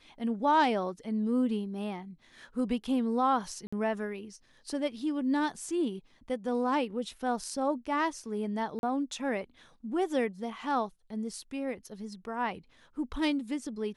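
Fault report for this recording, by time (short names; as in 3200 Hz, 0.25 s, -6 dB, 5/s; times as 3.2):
3.67–3.73 gap 55 ms
8.79–8.83 gap 41 ms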